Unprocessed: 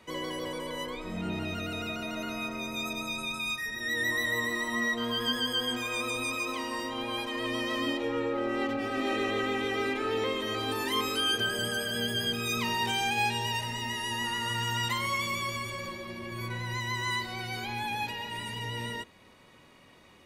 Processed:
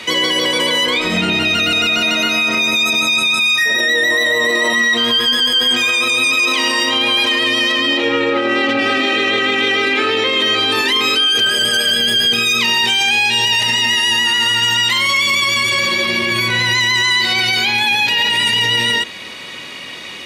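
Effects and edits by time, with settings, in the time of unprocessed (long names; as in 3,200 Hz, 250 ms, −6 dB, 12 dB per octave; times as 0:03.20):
0:03.64–0:04.73: parametric band 560 Hz +15 dB 1.3 octaves
0:07.72–0:11.30: high-shelf EQ 5,900 Hz −8 dB
whole clip: meter weighting curve D; boost into a limiter +27 dB; level −6.5 dB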